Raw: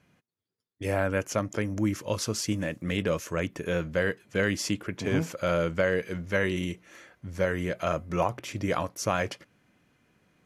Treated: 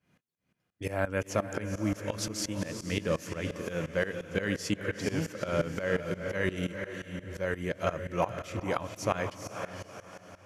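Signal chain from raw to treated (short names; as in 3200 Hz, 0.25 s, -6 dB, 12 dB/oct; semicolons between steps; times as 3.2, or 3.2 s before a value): diffused feedback echo 0.467 s, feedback 41%, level -7 dB; tremolo saw up 5.7 Hz, depth 90%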